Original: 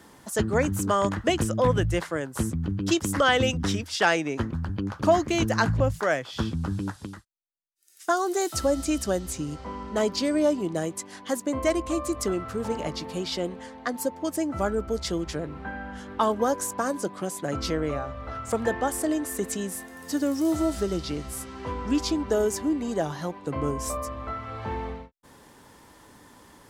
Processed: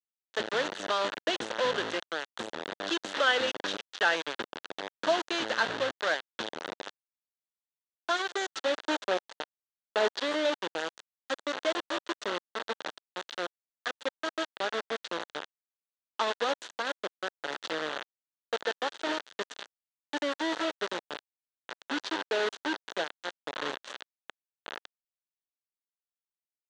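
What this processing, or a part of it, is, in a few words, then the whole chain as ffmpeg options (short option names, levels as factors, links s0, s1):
hand-held game console: -filter_complex "[0:a]acrusher=bits=3:mix=0:aa=0.000001,highpass=490,equalizer=f=730:t=q:w=4:g=-4,equalizer=f=1100:t=q:w=4:g=-4,equalizer=f=1600:t=q:w=4:g=3,equalizer=f=2300:t=q:w=4:g=-7,equalizer=f=3500:t=q:w=4:g=3,equalizer=f=5100:t=q:w=4:g=-7,lowpass=f=5200:w=0.5412,lowpass=f=5200:w=1.3066,asettb=1/sr,asplit=3[s0][s1][s2];[s0]atrim=end=8.844[s3];[s1]atrim=start=8.84:end=10.21,asetpts=PTS-STARTPTS,afade=t=in:d=0.004:c=qsin,afade=t=out:st=1.366:d=0.004:c=qsin,equalizer=f=710:t=o:w=2:g=5.5[s4];[s2]atrim=start=10.206[s5];[s3][s4]acrossfade=d=0.004:c1=hsin:c2=qsin[s6];[s6][s5]acrossfade=d=0.004:c1=qsin:c2=hsin,volume=0.708"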